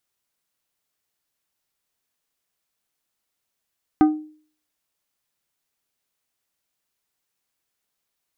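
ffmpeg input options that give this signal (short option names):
-f lavfi -i "aevalsrc='0.376*pow(10,-3*t/0.47)*sin(2*PI*307*t)+0.15*pow(10,-3*t/0.247)*sin(2*PI*767.5*t)+0.0596*pow(10,-3*t/0.178)*sin(2*PI*1228*t)+0.0237*pow(10,-3*t/0.152)*sin(2*PI*1535*t)+0.00944*pow(10,-3*t/0.127)*sin(2*PI*1995.5*t)':d=0.89:s=44100"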